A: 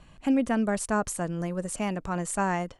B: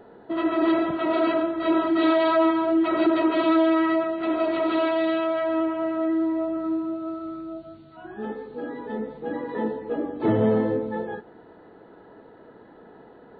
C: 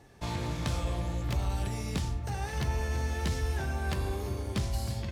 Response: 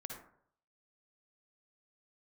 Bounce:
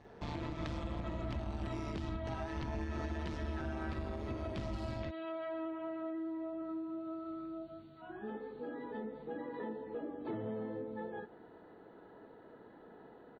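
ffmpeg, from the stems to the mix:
-filter_complex "[1:a]acompressor=threshold=0.0251:ratio=4,adelay=50,volume=0.422[s0];[2:a]lowpass=3800,tremolo=f=150:d=0.889,asoftclip=type=hard:threshold=0.0668,volume=1.12[s1];[s0][s1]amix=inputs=2:normalize=0,alimiter=level_in=1.88:limit=0.0631:level=0:latency=1:release=210,volume=0.531"

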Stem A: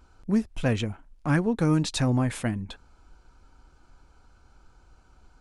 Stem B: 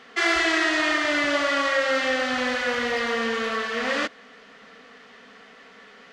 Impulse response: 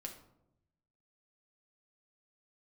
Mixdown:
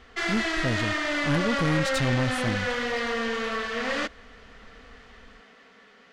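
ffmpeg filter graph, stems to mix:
-filter_complex "[0:a]volume=0.708[s0];[1:a]volume=0.596[s1];[s0][s1]amix=inputs=2:normalize=0,lowshelf=f=180:g=4.5,dynaudnorm=f=220:g=9:m=1.41,aeval=exprs='(tanh(8.91*val(0)+0.35)-tanh(0.35))/8.91':c=same"

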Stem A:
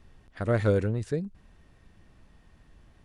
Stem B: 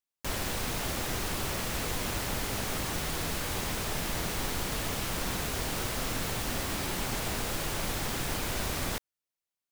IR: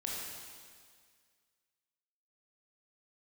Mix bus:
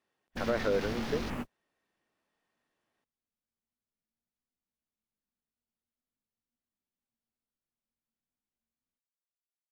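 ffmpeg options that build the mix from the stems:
-filter_complex "[0:a]highpass=390,volume=1.06,asplit=2[s0][s1];[1:a]equalizer=f=230:t=o:w=0.35:g=14,flanger=delay=15.5:depth=6.2:speed=0.44,volume=0.891[s2];[s1]apad=whole_len=428364[s3];[s2][s3]sidechaingate=range=0.00447:threshold=0.00112:ratio=16:detection=peak[s4];[s0][s4]amix=inputs=2:normalize=0,afwtdn=0.00631,alimiter=limit=0.112:level=0:latency=1:release=52"

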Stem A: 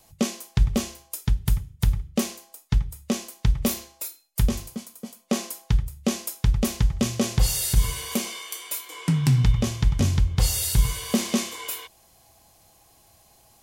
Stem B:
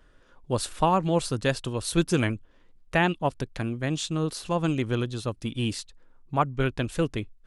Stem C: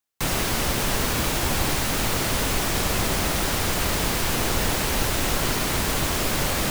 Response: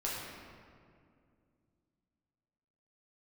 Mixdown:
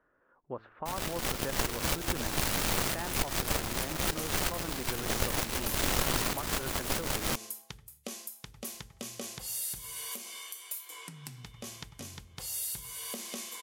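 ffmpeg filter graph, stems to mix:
-filter_complex "[0:a]equalizer=f=12000:t=o:w=0.98:g=8.5,acompressor=threshold=0.0501:ratio=4,adelay=2000,volume=0.447[s0];[1:a]lowpass=f=1700:w=0.5412,lowpass=f=1700:w=1.3066,acompressor=threshold=0.0562:ratio=6,volume=0.596,asplit=2[s1][s2];[2:a]aeval=exprs='0.355*(cos(1*acos(clip(val(0)/0.355,-1,1)))-cos(1*PI/2))+0.0501*(cos(7*acos(clip(val(0)/0.355,-1,1)))-cos(7*PI/2))':c=same,adelay=650,volume=1.41[s3];[s2]apad=whole_len=324375[s4];[s3][s4]sidechaincompress=threshold=0.00562:ratio=8:attack=16:release=134[s5];[s0][s1]amix=inputs=2:normalize=0,highpass=f=470:p=1,alimiter=limit=0.0668:level=0:latency=1:release=304,volume=1[s6];[s5][s6]amix=inputs=2:normalize=0,bandreject=f=110.1:t=h:w=4,bandreject=f=220.2:t=h:w=4,bandreject=f=330.3:t=h:w=4,bandreject=f=440.4:t=h:w=4,alimiter=limit=0.178:level=0:latency=1:release=83"

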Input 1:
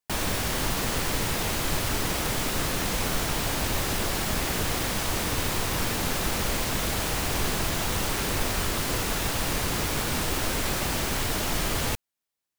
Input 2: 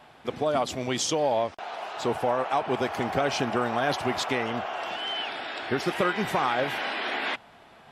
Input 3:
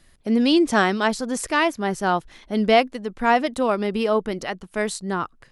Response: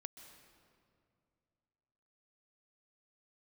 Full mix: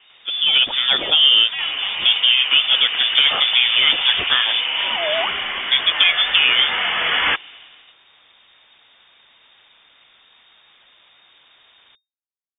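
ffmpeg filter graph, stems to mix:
-filter_complex "[0:a]aeval=exprs='0.0422*(abs(mod(val(0)/0.0422+3,4)-2)-1)':c=same,volume=0.126[s0];[1:a]dynaudnorm=f=100:g=9:m=5.01,volume=0.891[s1];[2:a]asoftclip=type=tanh:threshold=0.0944,afwtdn=0.0158,volume=0.794[s2];[s0][s1][s2]amix=inputs=3:normalize=0,lowpass=f=3100:t=q:w=0.5098,lowpass=f=3100:t=q:w=0.6013,lowpass=f=3100:t=q:w=0.9,lowpass=f=3100:t=q:w=2.563,afreqshift=-3700"

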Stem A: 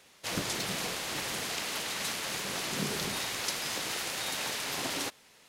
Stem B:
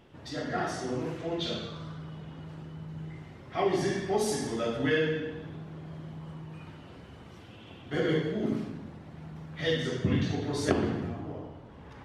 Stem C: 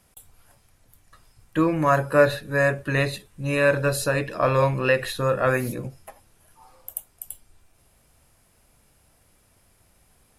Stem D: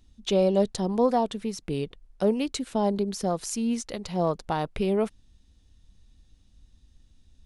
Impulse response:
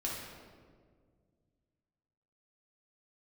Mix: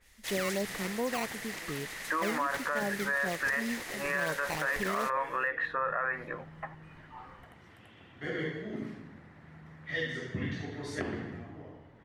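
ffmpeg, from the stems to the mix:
-filter_complex "[0:a]highshelf=f=5400:g=11.5,adynamicequalizer=threshold=0.00501:dfrequency=2600:dqfactor=0.7:tfrequency=2600:tqfactor=0.7:attack=5:release=100:ratio=0.375:range=3.5:mode=cutabove:tftype=highshelf,volume=0.316[s0];[1:a]adelay=300,volume=0.376[s1];[2:a]highpass=770,acompressor=threshold=0.0282:ratio=6,lowpass=f=1300:t=q:w=1.6,adelay=550,volume=1.33[s2];[3:a]acrusher=samples=15:mix=1:aa=0.000001:lfo=1:lforange=24:lforate=2.7,volume=0.335,asplit=2[s3][s4];[s4]apad=whole_len=544551[s5];[s1][s5]sidechaincompress=threshold=0.00316:ratio=8:attack=16:release=655[s6];[s0][s6][s2][s3]amix=inputs=4:normalize=0,equalizer=f=1900:w=3.4:g=12,alimiter=limit=0.0794:level=0:latency=1:release=29"

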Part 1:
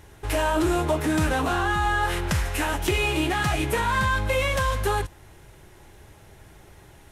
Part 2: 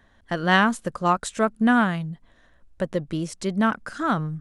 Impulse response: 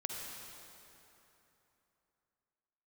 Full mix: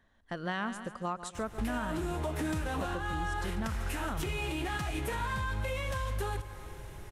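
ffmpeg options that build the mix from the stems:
-filter_complex "[0:a]lowshelf=f=78:g=7,acompressor=threshold=0.0316:ratio=3,adelay=1350,volume=0.794,asplit=2[s0][s1];[s1]volume=0.316[s2];[1:a]volume=0.316,asplit=2[s3][s4];[s4]volume=0.2[s5];[2:a]atrim=start_sample=2205[s6];[s2][s6]afir=irnorm=-1:irlink=0[s7];[s5]aecho=0:1:143|286|429|572|715|858:1|0.44|0.194|0.0852|0.0375|0.0165[s8];[s0][s3][s7][s8]amix=inputs=4:normalize=0,alimiter=level_in=1.12:limit=0.0631:level=0:latency=1:release=223,volume=0.891"

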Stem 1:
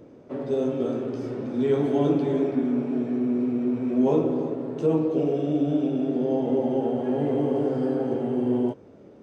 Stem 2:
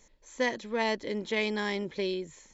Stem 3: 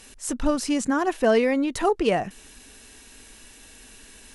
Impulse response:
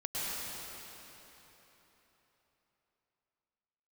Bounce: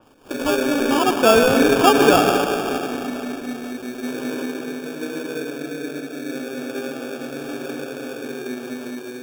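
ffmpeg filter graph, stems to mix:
-filter_complex "[0:a]volume=1.19,asplit=2[s0][s1];[s1]volume=0.266[s2];[1:a]alimiter=limit=0.0794:level=0:latency=1,volume=0.708[s3];[2:a]equalizer=f=820:w=1.9:g=5.5,dynaudnorm=f=290:g=7:m=2,volume=0.708,asplit=3[s4][s5][s6];[s5]volume=0.501[s7];[s6]apad=whole_len=406964[s8];[s0][s8]sidechaingate=range=0.0224:threshold=0.0126:ratio=16:detection=peak[s9];[3:a]atrim=start_sample=2205[s10];[s2][s7]amix=inputs=2:normalize=0[s11];[s11][s10]afir=irnorm=-1:irlink=0[s12];[s9][s3][s4][s12]amix=inputs=4:normalize=0,acrossover=split=160 3100:gain=0.0708 1 0.0708[s13][s14][s15];[s13][s14][s15]amix=inputs=3:normalize=0,acrusher=samples=22:mix=1:aa=0.000001,adynamicequalizer=threshold=0.0112:dfrequency=3800:dqfactor=0.7:tfrequency=3800:tqfactor=0.7:attack=5:release=100:ratio=0.375:range=2:mode=cutabove:tftype=highshelf"

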